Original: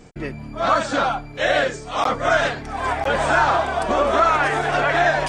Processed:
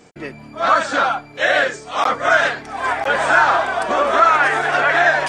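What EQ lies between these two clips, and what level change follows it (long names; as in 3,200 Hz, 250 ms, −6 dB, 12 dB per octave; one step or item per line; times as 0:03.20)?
high-pass filter 330 Hz 6 dB per octave
dynamic equaliser 1,600 Hz, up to +5 dB, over −31 dBFS, Q 1.5
+1.5 dB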